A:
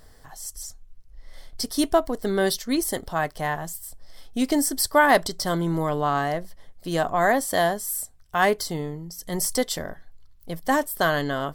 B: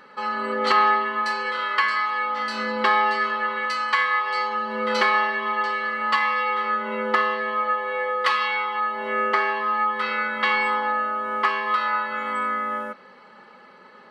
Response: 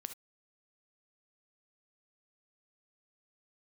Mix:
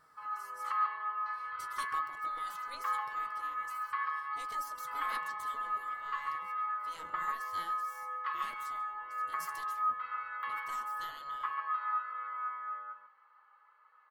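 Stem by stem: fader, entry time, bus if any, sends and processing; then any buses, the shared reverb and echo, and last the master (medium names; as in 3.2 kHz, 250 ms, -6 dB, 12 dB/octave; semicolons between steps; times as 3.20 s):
-13.0 dB, 0.00 s, no send, echo send -20.5 dB, spectral gate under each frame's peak -15 dB weak
-5.0 dB, 0.00 s, no send, echo send -5.5 dB, ladder band-pass 1.3 kHz, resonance 60%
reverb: none
echo: delay 140 ms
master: flange 0.43 Hz, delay 6.1 ms, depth 3.7 ms, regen +56%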